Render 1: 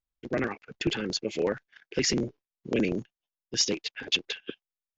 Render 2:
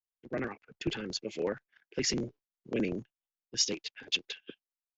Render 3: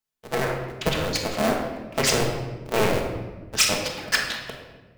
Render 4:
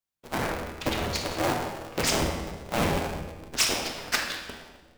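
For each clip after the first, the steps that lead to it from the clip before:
multiband upward and downward expander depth 40%; level −6 dB
sub-harmonics by changed cycles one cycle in 2, inverted; rectangular room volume 890 cubic metres, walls mixed, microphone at 1.5 metres; level +7.5 dB
sub-harmonics by changed cycles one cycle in 2, inverted; tuned comb filter 81 Hz, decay 1.1 s, harmonics all, mix 70%; level +4.5 dB

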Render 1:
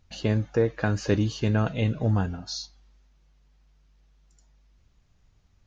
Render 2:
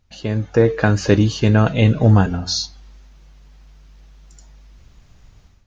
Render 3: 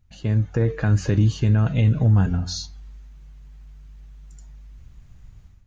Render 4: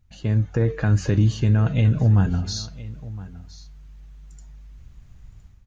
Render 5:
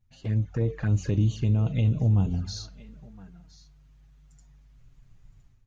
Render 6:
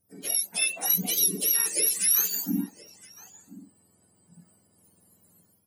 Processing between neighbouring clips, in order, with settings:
hum removal 90.29 Hz, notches 5; automatic gain control gain up to 15.5 dB
drawn EQ curve 130 Hz 0 dB, 270 Hz −7 dB, 520 Hz −11 dB, 1,900 Hz −8 dB, 5,400 Hz −13 dB, 7,700 Hz −5 dB; brickwall limiter −13 dBFS, peak gain reduction 7 dB; level +2.5 dB
single-tap delay 1,014 ms −18 dB
flanger swept by the level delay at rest 9 ms, full sweep at −16 dBFS; level −5 dB
frequency axis turned over on the octave scale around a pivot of 1,100 Hz; level +5.5 dB

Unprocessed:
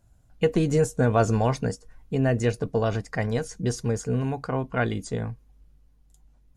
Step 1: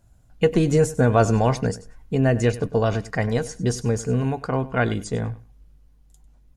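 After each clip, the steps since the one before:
repeating echo 98 ms, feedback 18%, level −17.5 dB
level +3.5 dB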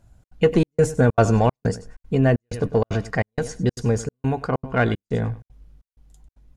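high-shelf EQ 7,100 Hz −7.5 dB
in parallel at −8 dB: soft clipping −19.5 dBFS, distortion −9 dB
on the sum: gate pattern "xxx.xxxx..x" 191 BPM −60 dB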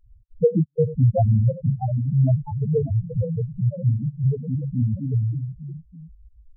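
each half-wave held at its own peak
delay with pitch and tempo change per echo 771 ms, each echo +2 semitones, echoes 3, each echo −6 dB
spectral peaks only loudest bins 2

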